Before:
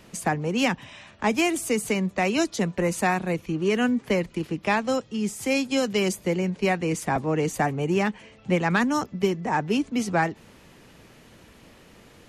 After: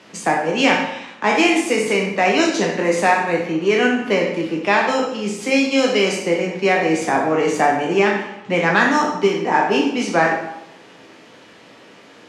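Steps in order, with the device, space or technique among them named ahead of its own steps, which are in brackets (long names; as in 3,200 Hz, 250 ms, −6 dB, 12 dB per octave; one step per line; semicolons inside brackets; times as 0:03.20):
peak hold with a decay on every bin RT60 0.45 s
supermarket ceiling speaker (band-pass filter 270–5,900 Hz; convolution reverb RT60 0.90 s, pre-delay 5 ms, DRR 1.5 dB)
level +5 dB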